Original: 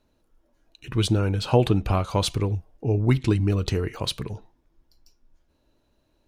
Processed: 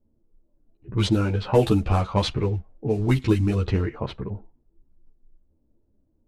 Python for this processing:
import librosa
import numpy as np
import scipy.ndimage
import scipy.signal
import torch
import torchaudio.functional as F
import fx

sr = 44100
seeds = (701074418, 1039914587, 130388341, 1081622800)

y = fx.cvsd(x, sr, bps=64000)
y = fx.env_lowpass(y, sr, base_hz=350.0, full_db=-16.0)
y = fx.ensemble(y, sr)
y = y * 10.0 ** (4.5 / 20.0)